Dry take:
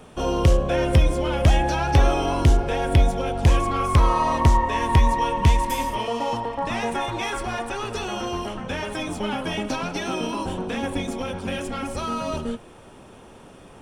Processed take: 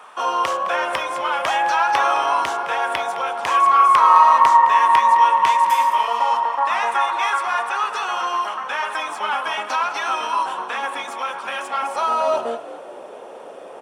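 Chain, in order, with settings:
high-shelf EQ 2,200 Hz −8.5 dB
echo with shifted repeats 212 ms, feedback 33%, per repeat +62 Hz, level −15.5 dB
high-pass filter sweep 1,100 Hz → 540 Hz, 0:11.50–0:12.88
level +7.5 dB

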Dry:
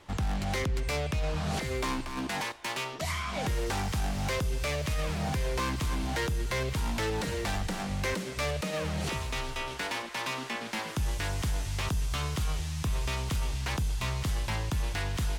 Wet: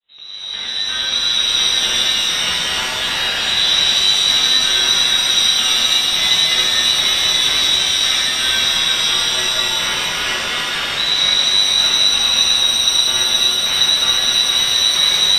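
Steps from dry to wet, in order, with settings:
fade in at the beginning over 1.44 s
voice inversion scrambler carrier 3,900 Hz
reverb with rising layers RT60 3.8 s, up +7 semitones, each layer −8 dB, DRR −9.5 dB
level +5 dB

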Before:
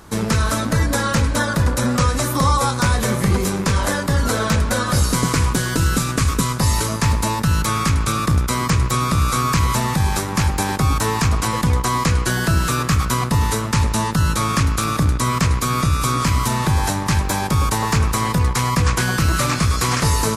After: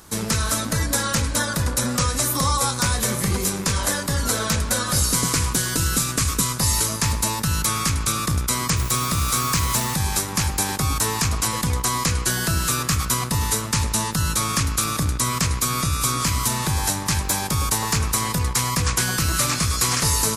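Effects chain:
high-shelf EQ 3,600 Hz +12 dB
0:08.76–0:09.93: background noise white −30 dBFS
level −6 dB

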